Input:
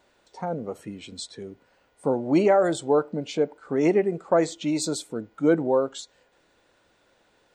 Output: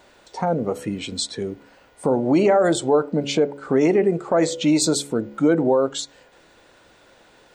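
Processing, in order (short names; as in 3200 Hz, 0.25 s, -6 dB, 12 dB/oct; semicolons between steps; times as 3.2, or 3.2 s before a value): de-hum 70.53 Hz, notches 8; in parallel at -1 dB: compressor, threshold -32 dBFS, peak gain reduction 16 dB; on the sum: limiter -14.5 dBFS, peak gain reduction 7.5 dB; gain +5.5 dB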